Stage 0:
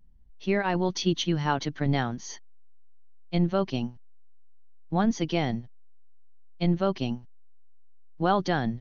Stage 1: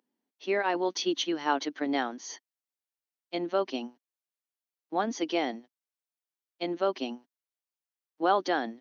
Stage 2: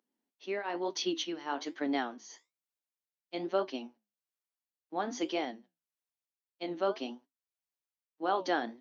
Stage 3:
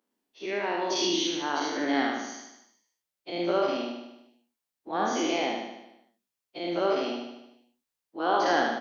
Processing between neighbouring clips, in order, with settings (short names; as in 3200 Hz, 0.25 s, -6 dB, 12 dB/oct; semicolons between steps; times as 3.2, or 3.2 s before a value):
Chebyshev high-pass 270 Hz, order 4
flange 1.1 Hz, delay 8.7 ms, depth 8.6 ms, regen -66%; tremolo triangle 1.2 Hz, depth 60%; gain +2 dB
spectral dilation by 0.12 s; feedback echo 75 ms, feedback 57%, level -4 dB